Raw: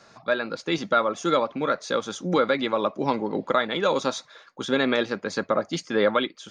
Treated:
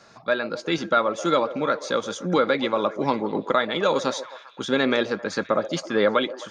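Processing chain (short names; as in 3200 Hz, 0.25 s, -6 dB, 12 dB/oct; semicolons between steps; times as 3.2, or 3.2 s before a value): delay with a stepping band-pass 0.131 s, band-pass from 470 Hz, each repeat 0.7 oct, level -11 dB; gain +1 dB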